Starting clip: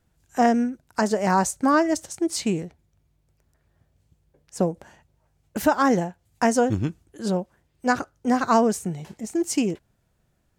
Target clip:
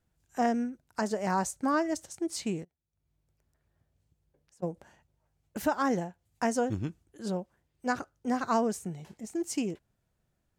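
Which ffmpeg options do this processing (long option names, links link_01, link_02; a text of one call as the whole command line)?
ffmpeg -i in.wav -filter_complex "[0:a]asplit=3[link_01][link_02][link_03];[link_01]afade=type=out:start_time=2.63:duration=0.02[link_04];[link_02]acompressor=threshold=-56dB:ratio=6,afade=type=in:start_time=2.63:duration=0.02,afade=type=out:start_time=4.62:duration=0.02[link_05];[link_03]afade=type=in:start_time=4.62:duration=0.02[link_06];[link_04][link_05][link_06]amix=inputs=3:normalize=0,volume=-8.5dB" out.wav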